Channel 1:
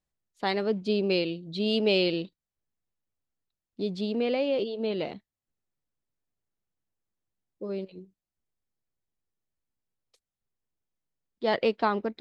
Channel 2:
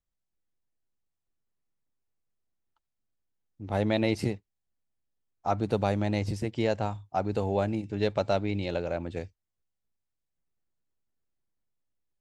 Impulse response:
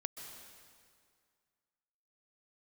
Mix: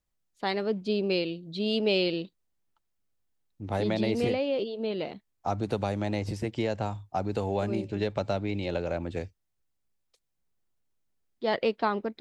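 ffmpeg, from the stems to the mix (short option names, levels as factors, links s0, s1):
-filter_complex "[0:a]volume=0.841[s0];[1:a]acrossover=split=290|1000|3500[s1][s2][s3][s4];[s1]acompressor=threshold=0.0224:ratio=4[s5];[s2]acompressor=threshold=0.0282:ratio=4[s6];[s3]acompressor=threshold=0.00891:ratio=4[s7];[s4]acompressor=threshold=0.00355:ratio=4[s8];[s5][s6][s7][s8]amix=inputs=4:normalize=0,volume=1.26[s9];[s0][s9]amix=inputs=2:normalize=0"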